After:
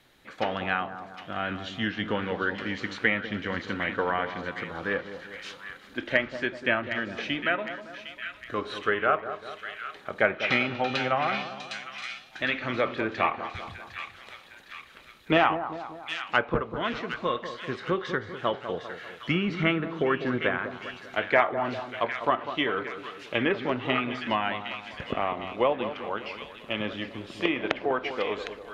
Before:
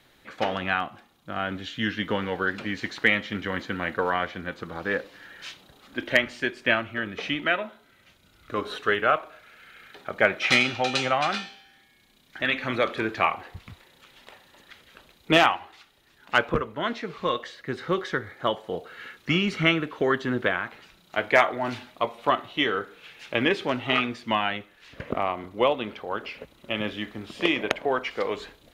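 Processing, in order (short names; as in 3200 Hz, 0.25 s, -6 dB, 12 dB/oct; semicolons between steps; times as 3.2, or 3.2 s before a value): split-band echo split 1300 Hz, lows 0.197 s, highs 0.758 s, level -10 dB; treble ducked by the level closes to 2300 Hz, closed at -19 dBFS; gain -2 dB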